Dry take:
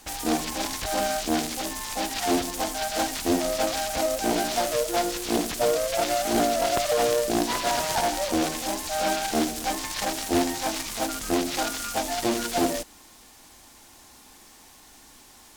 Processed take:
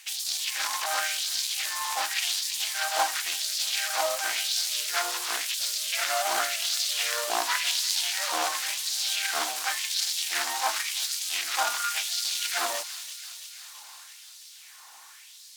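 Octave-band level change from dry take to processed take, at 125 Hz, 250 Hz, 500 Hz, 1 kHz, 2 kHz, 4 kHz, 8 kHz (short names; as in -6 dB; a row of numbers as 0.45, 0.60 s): under -35 dB, -26.0 dB, -12.5 dB, -4.0 dB, +2.5 dB, +4.5 dB, +2.0 dB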